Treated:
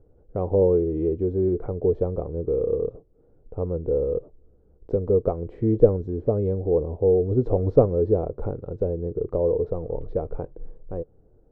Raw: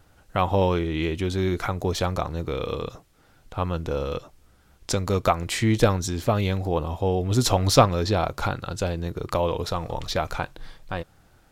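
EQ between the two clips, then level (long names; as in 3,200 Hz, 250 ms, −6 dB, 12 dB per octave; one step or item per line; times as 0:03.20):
low-pass with resonance 450 Hz, resonance Q 4.9
low-shelf EQ 60 Hz +10 dB
−5.0 dB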